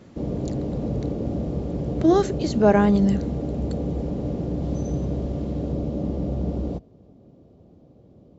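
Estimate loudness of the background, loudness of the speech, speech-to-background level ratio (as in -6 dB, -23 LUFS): -28.0 LUFS, -20.5 LUFS, 7.5 dB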